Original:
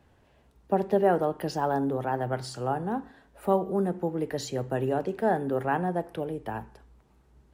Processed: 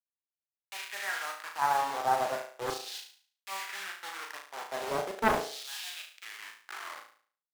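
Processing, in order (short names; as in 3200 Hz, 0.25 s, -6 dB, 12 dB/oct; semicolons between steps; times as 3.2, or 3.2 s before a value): tape stop at the end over 1.70 s; graphic EQ 125/250/500/1000/2000/4000/8000 Hz -4/-5/-4/+3/+8/-9/-9 dB; harmonic-percussive split percussive -10 dB; high shelf 3400 Hz -6 dB; requantised 6-bit, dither none; LFO high-pass saw down 0.37 Hz 400–4500 Hz; flutter echo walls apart 6.2 m, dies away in 0.47 s; Doppler distortion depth 0.87 ms; gain -2.5 dB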